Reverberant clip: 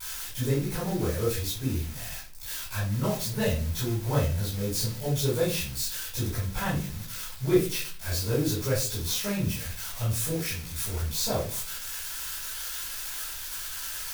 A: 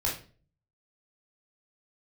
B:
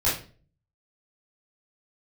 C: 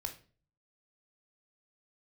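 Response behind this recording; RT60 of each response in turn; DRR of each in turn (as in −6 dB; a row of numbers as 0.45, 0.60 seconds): B; 0.40, 0.40, 0.40 seconds; −4.0, −9.5, 4.5 decibels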